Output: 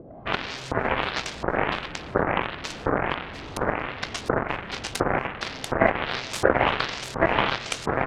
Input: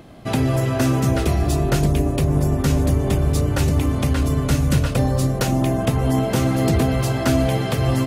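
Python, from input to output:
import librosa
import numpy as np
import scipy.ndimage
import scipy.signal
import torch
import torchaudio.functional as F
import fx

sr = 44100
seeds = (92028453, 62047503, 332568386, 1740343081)

y = fx.fold_sine(x, sr, drive_db=14, ceiling_db=-6.0)
y = fx.filter_lfo_lowpass(y, sr, shape='saw_up', hz=1.4, low_hz=460.0, high_hz=4400.0, q=2.8)
y = fx.cheby_harmonics(y, sr, harmonics=(3,), levels_db=(-8,), full_scale_db=3.5)
y = y * librosa.db_to_amplitude(-6.5)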